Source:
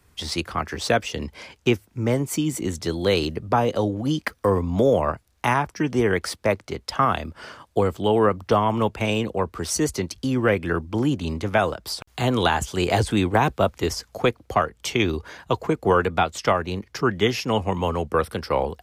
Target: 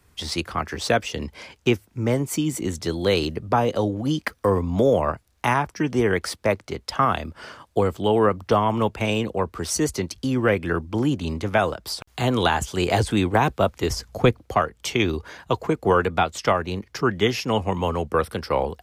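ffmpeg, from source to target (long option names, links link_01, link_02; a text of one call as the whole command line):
ffmpeg -i in.wav -filter_complex "[0:a]asettb=1/sr,asplit=3[link_01][link_02][link_03];[link_01]atrim=end=13.904[link_04];[link_02]atrim=start=13.9:end=14.4,asetpts=PTS-STARTPTS,afade=type=in:duration=0.004:curve=qsin,afade=type=out:start_time=0.496:duration=0.004:curve=qsin,lowshelf=frequency=220:gain=11[link_05];[link_03]atrim=start=14.396[link_06];[link_04][link_05]acrossfade=duration=0.004:curve1=hsin:curve2=qsin[link_07];[link_07][link_06]acrossfade=duration=0.004:curve1=qsin:curve2=hsin" out.wav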